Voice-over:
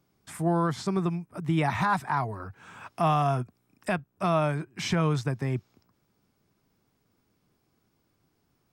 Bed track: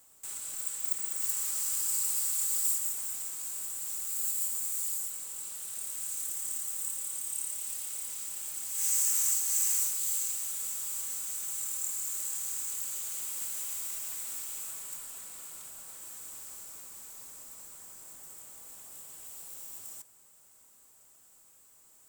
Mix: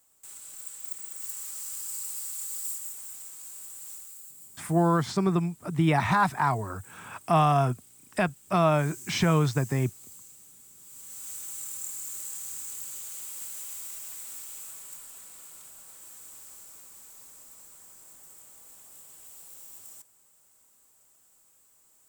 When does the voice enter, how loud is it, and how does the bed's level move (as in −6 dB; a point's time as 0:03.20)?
4.30 s, +2.5 dB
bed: 0:03.93 −5.5 dB
0:04.33 −17.5 dB
0:10.74 −17.5 dB
0:11.28 −2.5 dB